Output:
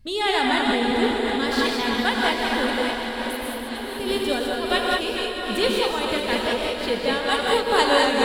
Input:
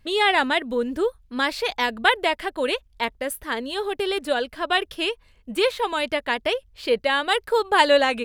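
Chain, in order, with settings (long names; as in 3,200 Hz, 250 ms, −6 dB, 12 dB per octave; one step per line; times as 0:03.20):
feedback delay that plays each chunk backwards 226 ms, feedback 65%, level −7 dB
drawn EQ curve 190 Hz 0 dB, 390 Hz −10 dB, 2,600 Hz −12 dB, 4,300 Hz −6 dB
0:02.70–0:03.98: output level in coarse steps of 22 dB
feedback delay with all-pass diffusion 629 ms, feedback 46%, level −6 dB
reverb whose tail is shaped and stops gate 230 ms rising, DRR −1 dB
amplitude modulation by smooth noise, depth 50%
level +8 dB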